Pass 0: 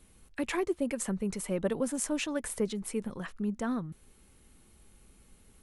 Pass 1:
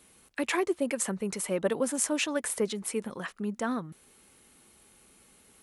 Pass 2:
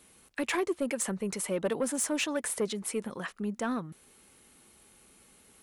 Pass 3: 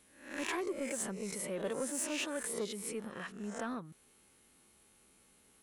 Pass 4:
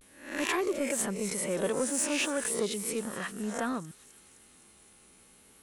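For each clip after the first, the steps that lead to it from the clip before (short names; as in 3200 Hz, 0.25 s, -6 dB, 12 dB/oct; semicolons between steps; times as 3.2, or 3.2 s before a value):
HPF 400 Hz 6 dB/oct; gain +5.5 dB
soft clip -21.5 dBFS, distortion -17 dB
spectral swells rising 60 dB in 0.54 s; gain -8.5 dB
vibrato 0.37 Hz 44 cents; thin delay 0.258 s, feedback 65%, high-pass 4300 Hz, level -11.5 dB; gain +7 dB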